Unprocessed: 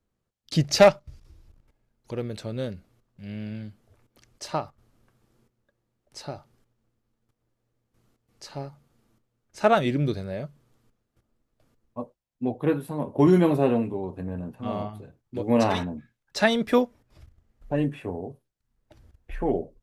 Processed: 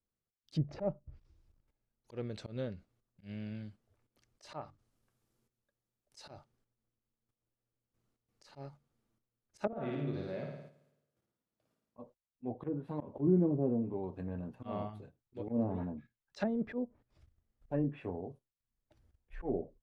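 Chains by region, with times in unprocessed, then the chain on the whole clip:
0:04.61–0:06.31: high-shelf EQ 4,300 Hz +9 dB + mains-hum notches 50/100/150/200/250/300/350 Hz + saturating transformer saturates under 740 Hz
0:09.67–0:11.99: high-pass filter 120 Hz + downward compressor 5 to 1, threshold −28 dBFS + flutter between parallel walls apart 9.4 metres, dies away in 0.97 s
whole clip: noise gate −45 dBFS, range −7 dB; treble cut that deepens with the level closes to 400 Hz, closed at −18.5 dBFS; volume swells 105 ms; level −7.5 dB

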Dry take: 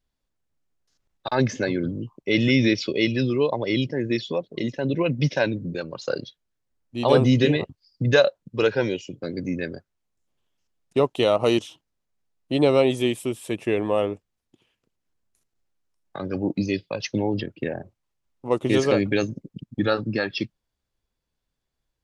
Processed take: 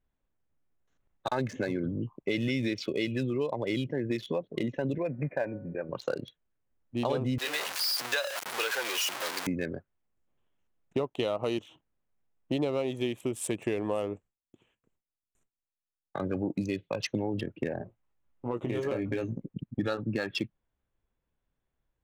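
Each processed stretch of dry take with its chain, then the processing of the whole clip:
0:04.98–0:05.89: variable-slope delta modulation 64 kbit/s + Chebyshev low-pass with heavy ripple 2,500 Hz, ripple 9 dB + hum removal 184.2 Hz, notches 8
0:07.38–0:09.47: converter with a step at zero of −19.5 dBFS + high-pass filter 1,000 Hz
0:13.33–0:16.68: noise gate with hold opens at −58 dBFS, closes at −61 dBFS + parametric band 8,300 Hz +13.5 dB 0.78 octaves
0:17.79–0:19.45: downward compressor 2.5 to 1, threshold −30 dBFS + double-tracking delay 17 ms −5 dB
whole clip: adaptive Wiener filter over 9 samples; downward compressor 6 to 1, threshold −27 dBFS

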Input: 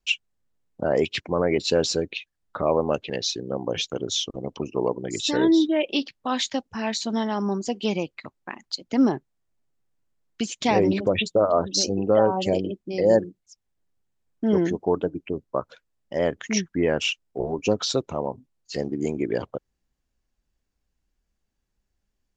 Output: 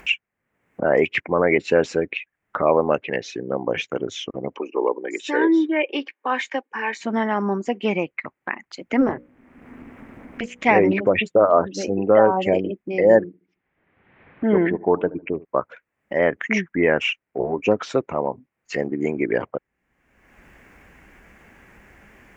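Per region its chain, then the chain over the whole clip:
0:04.56–0:07.01: high-pass filter 310 Hz 24 dB per octave + notch comb filter 670 Hz
0:09.00–0:10.65: mains-hum notches 60/120/180/240/300 Hz + background noise brown −54 dBFS + amplitude modulation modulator 250 Hz, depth 85%
0:13.26–0:15.45: Butterworth low-pass 3,900 Hz 48 dB per octave + delay with a low-pass on its return 74 ms, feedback 33%, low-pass 1,100 Hz, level −19 dB
whole clip: high-pass filter 210 Hz 6 dB per octave; high shelf with overshoot 3,000 Hz −12 dB, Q 3; upward compression, threshold −30 dBFS; level +4.5 dB

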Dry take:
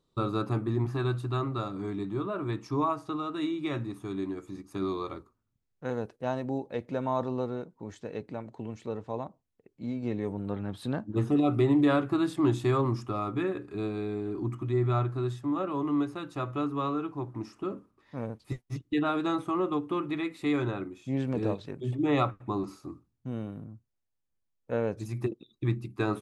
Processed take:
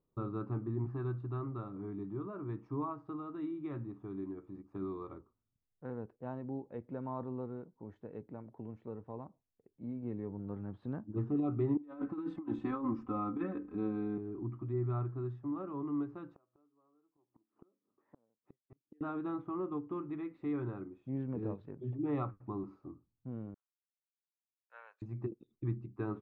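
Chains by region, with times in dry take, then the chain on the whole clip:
0:11.77–0:14.18: comb filter 3.9 ms, depth 92% + compressor whose output falls as the input rises −27 dBFS, ratio −0.5
0:16.35–0:19.01: high-pass filter 260 Hz + gate with flip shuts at −35 dBFS, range −32 dB + high-frequency loss of the air 380 metres
0:23.54–0:25.02: high-pass filter 1,200 Hz 24 dB per octave + multiband upward and downward expander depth 100%
whole clip: low-pass filter 1,100 Hz 12 dB per octave; dynamic equaliser 630 Hz, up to −7 dB, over −45 dBFS, Q 1.7; level −7 dB

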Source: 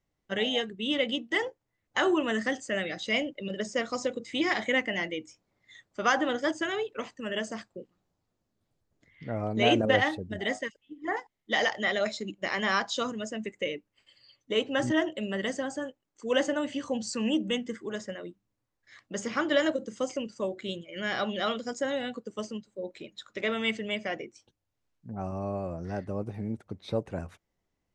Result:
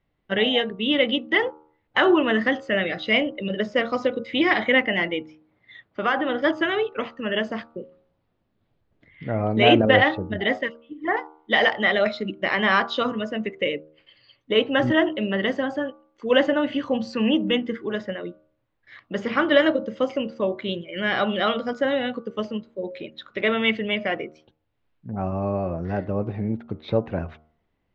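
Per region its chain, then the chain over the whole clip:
0:05.20–0:06.42: high-pass filter 48 Hz + parametric band 7,600 Hz −10 dB 0.82 octaves + downward compressor 1.5 to 1, threshold −33 dBFS
whole clip: low-pass filter 3,600 Hz 24 dB per octave; hum removal 77.51 Hz, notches 19; level +8 dB

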